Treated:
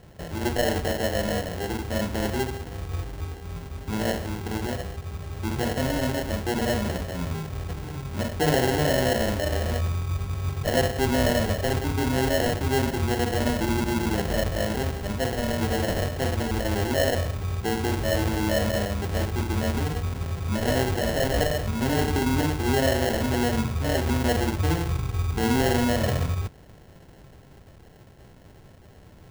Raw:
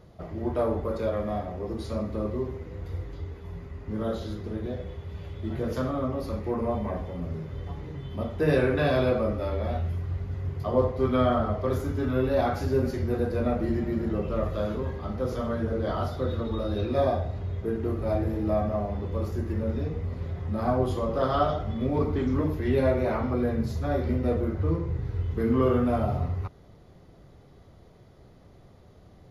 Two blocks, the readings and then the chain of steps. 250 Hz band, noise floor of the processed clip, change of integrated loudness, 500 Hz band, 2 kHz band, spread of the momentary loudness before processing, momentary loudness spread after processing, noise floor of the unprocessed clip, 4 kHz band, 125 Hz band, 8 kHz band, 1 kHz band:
+1.5 dB, -49 dBFS, +2.5 dB, +0.5 dB, +10.0 dB, 11 LU, 9 LU, -53 dBFS, +14.0 dB, +2.5 dB, no reading, +3.0 dB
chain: low-pass 4.7 kHz; in parallel at +2.5 dB: peak limiter -20 dBFS, peak gain reduction 9 dB; on the sum: sample-rate reducer 1.2 kHz, jitter 0%; trim -4 dB

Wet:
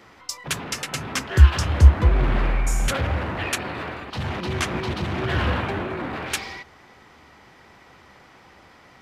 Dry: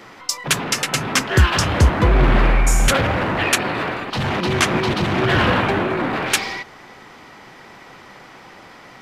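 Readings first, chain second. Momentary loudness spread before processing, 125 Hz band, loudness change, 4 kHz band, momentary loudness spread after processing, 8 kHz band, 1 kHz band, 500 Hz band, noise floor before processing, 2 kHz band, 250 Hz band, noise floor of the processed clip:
8 LU, -0.5 dB, -4.5 dB, -8.5 dB, 14 LU, -8.5 dB, -8.5 dB, -8.5 dB, -43 dBFS, -8.5 dB, -8.0 dB, -51 dBFS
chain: peaking EQ 71 Hz +15 dB 0.6 oct; trim -8.5 dB

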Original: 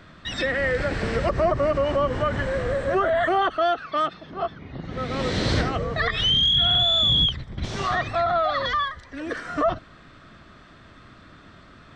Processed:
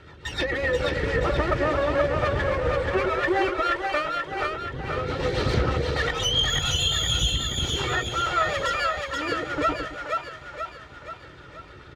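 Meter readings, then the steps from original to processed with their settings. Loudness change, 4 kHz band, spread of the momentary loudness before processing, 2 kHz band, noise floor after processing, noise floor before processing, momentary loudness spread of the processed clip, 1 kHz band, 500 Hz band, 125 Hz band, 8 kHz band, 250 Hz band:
-2.0 dB, -4.5 dB, 15 LU, +1.5 dB, -46 dBFS, -49 dBFS, 14 LU, -1.5 dB, -1.5 dB, +0.5 dB, +11.5 dB, -1.0 dB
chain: comb filter that takes the minimum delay 2.2 ms; low-pass 3.7 kHz 6 dB/octave; reverb removal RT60 0.59 s; high-pass 41 Hz; in parallel at 0 dB: compression, threshold -32 dBFS, peak gain reduction 12 dB; on the sum: rotary cabinet horn 7 Hz; doubling 14 ms -13.5 dB; two-band feedback delay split 520 Hz, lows 109 ms, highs 480 ms, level -3 dB; loudspeaker Doppler distortion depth 0.15 ms

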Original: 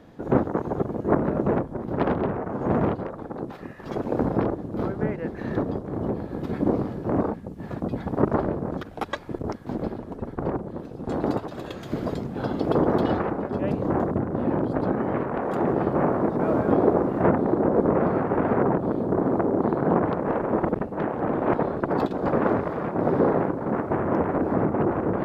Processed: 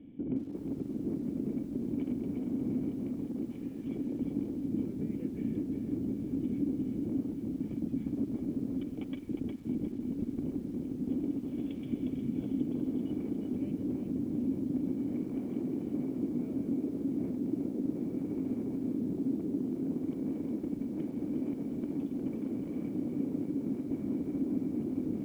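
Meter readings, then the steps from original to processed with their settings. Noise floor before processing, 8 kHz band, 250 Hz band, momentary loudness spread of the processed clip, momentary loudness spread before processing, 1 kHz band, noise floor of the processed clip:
-39 dBFS, no reading, -6.0 dB, 3 LU, 10 LU, under -30 dB, -41 dBFS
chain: compression 8:1, threshold -29 dBFS, peak gain reduction 15.5 dB; cascade formant filter i; bit-crushed delay 358 ms, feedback 35%, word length 11-bit, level -5 dB; trim +5 dB

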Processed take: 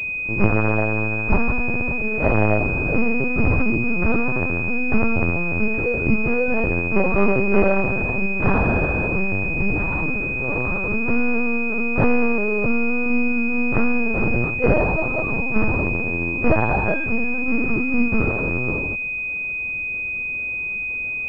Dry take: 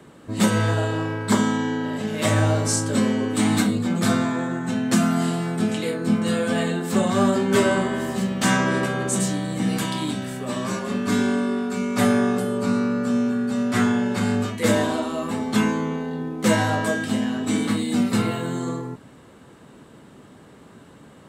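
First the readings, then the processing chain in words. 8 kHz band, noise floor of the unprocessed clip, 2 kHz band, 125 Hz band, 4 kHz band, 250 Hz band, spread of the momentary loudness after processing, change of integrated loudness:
under -30 dB, -48 dBFS, +8.5 dB, +1.5 dB, under -20 dB, -2.0 dB, 5 LU, +2.0 dB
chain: bass shelf 170 Hz -3.5 dB; LPC vocoder at 8 kHz pitch kept; class-D stage that switches slowly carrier 2.5 kHz; trim +4 dB

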